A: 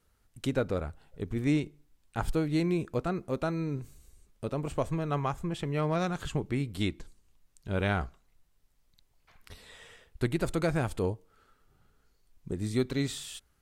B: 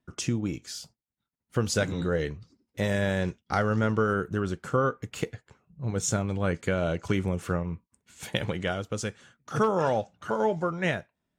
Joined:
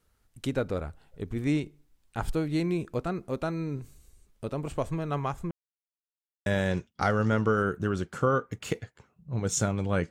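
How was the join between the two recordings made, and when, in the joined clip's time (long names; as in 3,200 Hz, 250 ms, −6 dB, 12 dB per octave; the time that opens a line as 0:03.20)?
A
0:05.51–0:06.46: silence
0:06.46: continue with B from 0:02.97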